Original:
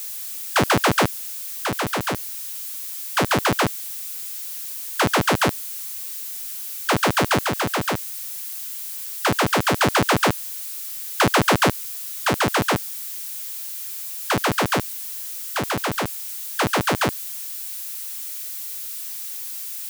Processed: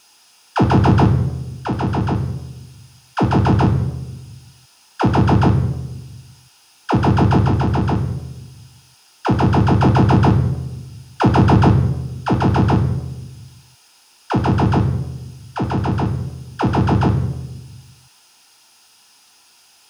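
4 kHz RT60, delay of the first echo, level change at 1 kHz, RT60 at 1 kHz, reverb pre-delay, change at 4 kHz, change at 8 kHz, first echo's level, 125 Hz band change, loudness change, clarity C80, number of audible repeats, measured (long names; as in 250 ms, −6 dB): 0.75 s, no echo audible, +2.0 dB, 1.0 s, 3 ms, −8.0 dB, below −15 dB, no echo audible, +14.5 dB, +6.0 dB, 13.0 dB, no echo audible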